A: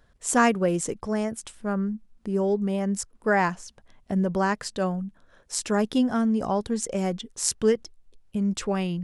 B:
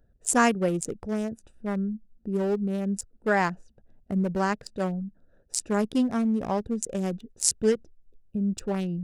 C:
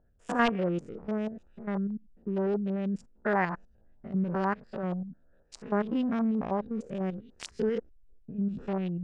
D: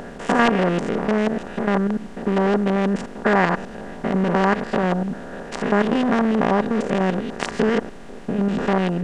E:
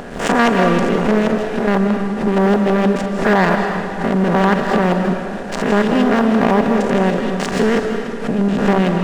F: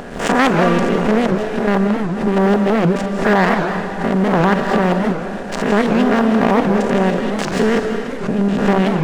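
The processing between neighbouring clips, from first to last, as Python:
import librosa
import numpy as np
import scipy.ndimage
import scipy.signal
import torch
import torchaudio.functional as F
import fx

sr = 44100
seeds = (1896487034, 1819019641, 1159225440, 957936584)

y1 = fx.wiener(x, sr, points=41)
y1 = fx.high_shelf(y1, sr, hz=5400.0, db=8.0)
y1 = y1 * librosa.db_to_amplitude(-1.0)
y2 = fx.spec_steps(y1, sr, hold_ms=100)
y2 = 10.0 ** (-15.5 / 20.0) * (np.abs((y2 / 10.0 ** (-15.5 / 20.0) + 3.0) % 4.0 - 2.0) - 1.0)
y2 = fx.filter_lfo_lowpass(y2, sr, shape='saw_up', hz=6.3, low_hz=890.0, high_hz=3900.0, q=1.6)
y2 = y2 * librosa.db_to_amplitude(-2.5)
y3 = fx.bin_compress(y2, sr, power=0.4)
y3 = y3 * librosa.db_to_amplitude(5.5)
y4 = fx.leveller(y3, sr, passes=2)
y4 = fx.rev_freeverb(y4, sr, rt60_s=1.7, hf_ratio=0.95, predelay_ms=120, drr_db=4.5)
y4 = fx.pre_swell(y4, sr, db_per_s=89.0)
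y4 = y4 * librosa.db_to_amplitude(-3.0)
y5 = fx.record_warp(y4, sr, rpm=78.0, depth_cents=250.0)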